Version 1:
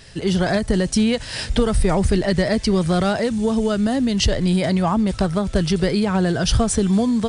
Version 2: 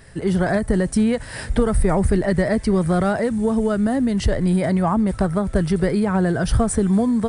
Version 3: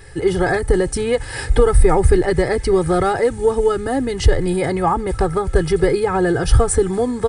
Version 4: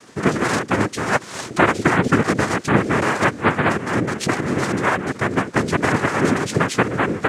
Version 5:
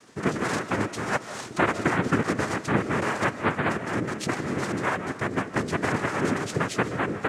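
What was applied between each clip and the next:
flat-topped bell 4,200 Hz −11 dB
comb filter 2.4 ms, depth 85%; level +2.5 dB
cochlear-implant simulation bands 3; level −1.5 dB
convolution reverb RT60 0.70 s, pre-delay 110 ms, DRR 12 dB; level −7.5 dB

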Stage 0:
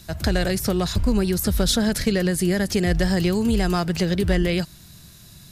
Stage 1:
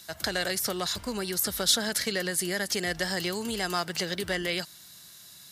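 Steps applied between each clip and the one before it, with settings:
high-pass filter 1,100 Hz 6 dB per octave
notch filter 2,500 Hz, Q 11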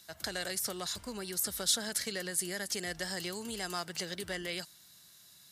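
dynamic equaliser 8,600 Hz, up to +6 dB, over −44 dBFS, Q 1
level −8.5 dB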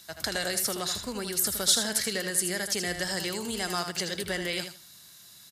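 repeating echo 79 ms, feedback 20%, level −8 dB
level +6 dB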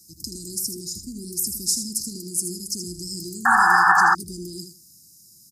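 Chebyshev band-stop filter 350–5,000 Hz, order 5
sound drawn into the spectrogram noise, 0:03.45–0:04.15, 730–1,800 Hz −18 dBFS
level +2.5 dB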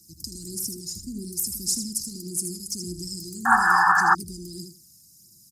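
phase shifter 1.7 Hz, delay 1.2 ms, feedback 46%
level −3.5 dB

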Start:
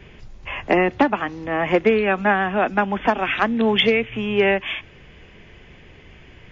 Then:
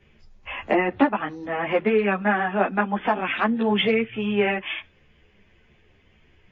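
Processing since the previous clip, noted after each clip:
treble cut that deepens with the level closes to 3,000 Hz, closed at −17 dBFS
noise reduction from a noise print of the clip's start 10 dB
string-ensemble chorus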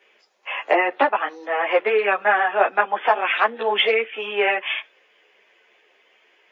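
high-pass filter 450 Hz 24 dB per octave
level +5 dB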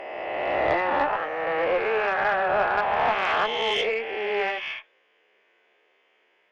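peak hold with a rise ahead of every peak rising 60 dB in 2.34 s
high-shelf EQ 3,300 Hz −9 dB
tube saturation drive 7 dB, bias 0.4
level −6.5 dB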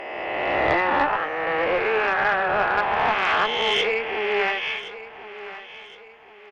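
parametric band 610 Hz −5.5 dB 0.83 octaves
in parallel at −0.5 dB: speech leveller within 4 dB 2 s
on the sum: repeating echo 1,068 ms, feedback 38%, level −15 dB
level −1.5 dB

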